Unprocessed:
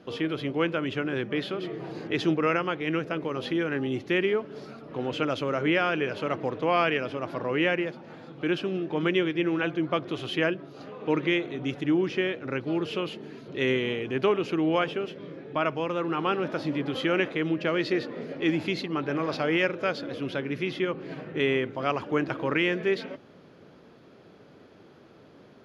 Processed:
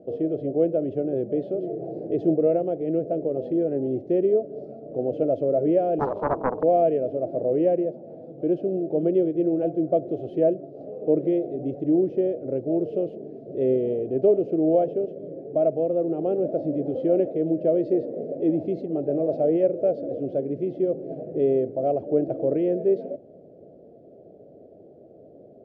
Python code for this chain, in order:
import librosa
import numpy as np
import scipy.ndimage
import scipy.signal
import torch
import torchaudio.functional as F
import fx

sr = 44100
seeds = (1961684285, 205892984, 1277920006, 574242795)

y = fx.curve_eq(x, sr, hz=(220.0, 670.0, 1000.0), db=(0, 10, -28))
y = fx.doppler_dist(y, sr, depth_ms=0.83, at=(5.99, 6.63))